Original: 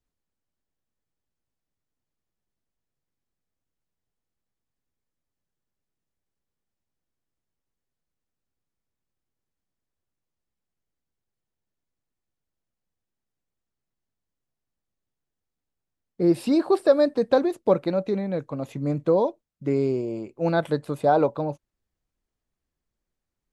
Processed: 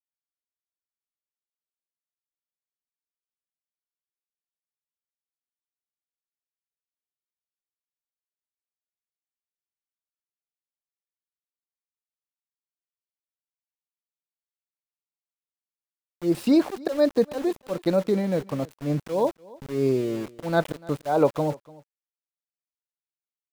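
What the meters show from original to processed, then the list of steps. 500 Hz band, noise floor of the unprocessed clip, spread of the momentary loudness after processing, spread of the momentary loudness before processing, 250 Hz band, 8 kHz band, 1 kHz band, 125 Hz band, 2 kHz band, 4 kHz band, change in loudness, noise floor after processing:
-2.5 dB, -85 dBFS, 9 LU, 10 LU, 0.0 dB, no reading, -3.5 dB, -0.5 dB, -0.5 dB, +0.5 dB, -1.5 dB, under -85 dBFS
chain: slow attack 200 ms; small samples zeroed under -38 dBFS; on a send: delay 293 ms -22.5 dB; on the sum: trim +2.5 dB

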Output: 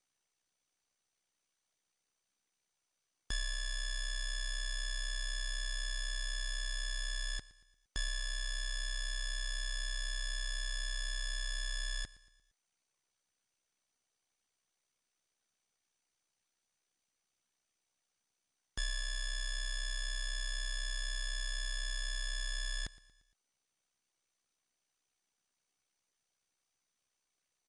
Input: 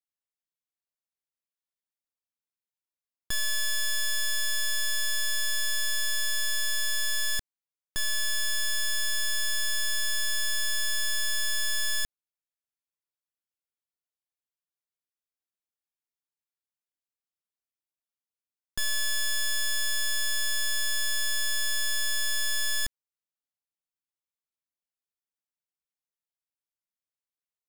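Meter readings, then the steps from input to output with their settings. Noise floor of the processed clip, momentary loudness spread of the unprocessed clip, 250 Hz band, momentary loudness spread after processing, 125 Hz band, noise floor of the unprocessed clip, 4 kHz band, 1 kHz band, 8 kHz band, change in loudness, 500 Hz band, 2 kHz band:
under -85 dBFS, 2 LU, no reading, 1 LU, +2.5 dB, under -85 dBFS, -11.0 dB, -10.0 dB, -14.5 dB, -11.5 dB, -10.5 dB, -10.5 dB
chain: power-law waveshaper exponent 0.7; low-pass 7.2 kHz 12 dB/octave; reverb removal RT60 0.73 s; ring modulator 32 Hz; feedback delay 116 ms, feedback 48%, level -19 dB; trim -4.5 dB; MP2 128 kbps 24 kHz

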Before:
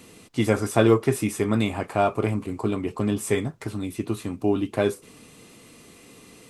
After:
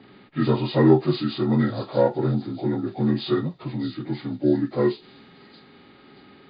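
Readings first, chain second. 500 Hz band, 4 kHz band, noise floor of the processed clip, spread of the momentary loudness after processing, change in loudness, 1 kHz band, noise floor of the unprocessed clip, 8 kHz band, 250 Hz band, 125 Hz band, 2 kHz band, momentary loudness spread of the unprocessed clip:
+0.5 dB, +2.0 dB, -51 dBFS, 12 LU, +1.5 dB, -2.0 dB, -50 dBFS, under -40 dB, +2.5 dB, +2.5 dB, -4.5 dB, 11 LU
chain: frequency axis rescaled in octaves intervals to 77%; band-stop 1.5 kHz, Q 7; level-controlled noise filter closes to 2.3 kHz, open at -18 dBFS; harmonic-percussive split harmonic +5 dB; on a send: feedback echo behind a high-pass 629 ms, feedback 35%, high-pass 4.8 kHz, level -5 dB; on the sum: trim -1 dB

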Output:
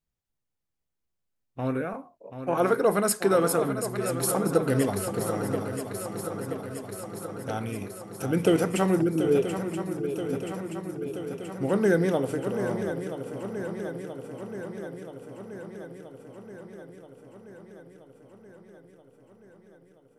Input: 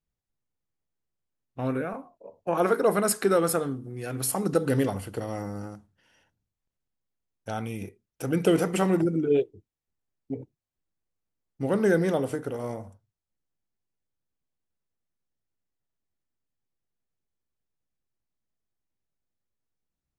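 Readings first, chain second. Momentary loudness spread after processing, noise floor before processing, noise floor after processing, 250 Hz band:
20 LU, under -85 dBFS, -81 dBFS, +1.0 dB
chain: shuffle delay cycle 978 ms, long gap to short 3:1, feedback 67%, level -9.5 dB

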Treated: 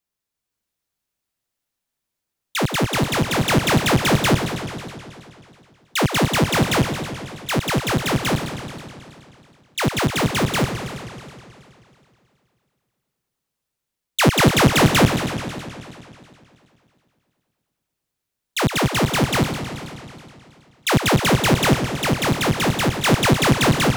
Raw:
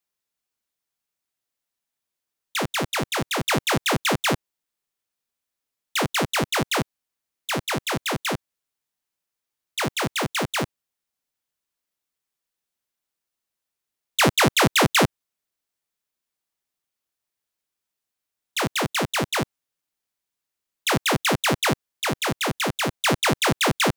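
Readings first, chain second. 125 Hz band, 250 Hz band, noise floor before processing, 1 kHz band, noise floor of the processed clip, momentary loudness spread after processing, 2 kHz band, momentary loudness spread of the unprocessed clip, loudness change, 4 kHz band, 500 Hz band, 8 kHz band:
+9.5 dB, +7.5 dB, -85 dBFS, +3.0 dB, -82 dBFS, 16 LU, +2.5 dB, 11 LU, +4.0 dB, +2.5 dB, +4.5 dB, +2.5 dB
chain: bass shelf 280 Hz +9 dB; level rider gain up to 3 dB; modulated delay 107 ms, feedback 75%, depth 209 cents, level -9 dB; trim -1 dB

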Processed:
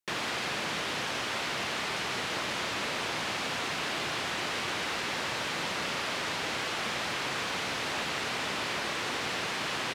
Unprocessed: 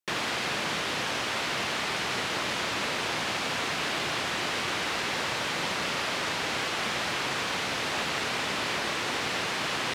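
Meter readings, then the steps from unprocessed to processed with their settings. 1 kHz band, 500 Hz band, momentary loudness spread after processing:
-3.0 dB, -3.0 dB, 0 LU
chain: in parallel at -3 dB: peak limiter -27.5 dBFS, peak gain reduction 10 dB; on the sum: speakerphone echo 190 ms, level -13 dB; trim -5.5 dB

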